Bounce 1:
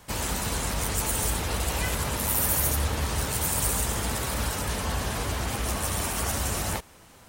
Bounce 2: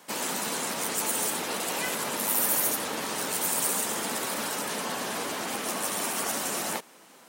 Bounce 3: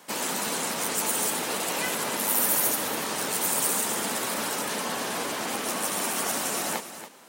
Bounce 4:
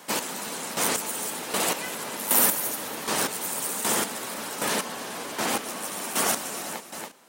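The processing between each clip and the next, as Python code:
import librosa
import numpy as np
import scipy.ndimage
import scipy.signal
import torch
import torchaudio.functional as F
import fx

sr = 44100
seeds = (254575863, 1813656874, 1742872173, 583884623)

y1 = scipy.signal.sosfilt(scipy.signal.butter(4, 210.0, 'highpass', fs=sr, output='sos'), x)
y2 = y1 + 10.0 ** (-11.5 / 20.0) * np.pad(y1, (int(281 * sr / 1000.0), 0))[:len(y1)]
y2 = F.gain(torch.from_numpy(y2), 1.5).numpy()
y3 = fx.chopper(y2, sr, hz=1.3, depth_pct=65, duty_pct=25)
y3 = F.gain(torch.from_numpy(y3), 4.5).numpy()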